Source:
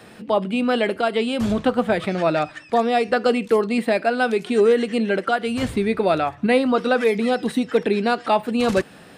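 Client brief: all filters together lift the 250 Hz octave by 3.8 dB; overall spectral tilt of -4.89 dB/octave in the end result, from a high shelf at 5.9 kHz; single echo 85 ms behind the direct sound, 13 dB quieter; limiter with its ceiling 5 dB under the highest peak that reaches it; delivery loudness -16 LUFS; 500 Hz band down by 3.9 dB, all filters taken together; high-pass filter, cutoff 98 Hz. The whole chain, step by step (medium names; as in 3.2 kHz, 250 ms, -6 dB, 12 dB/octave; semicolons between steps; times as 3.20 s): high-pass 98 Hz; peaking EQ 250 Hz +5.5 dB; peaking EQ 500 Hz -6 dB; treble shelf 5.9 kHz -8.5 dB; peak limiter -12 dBFS; delay 85 ms -13 dB; trim +5.5 dB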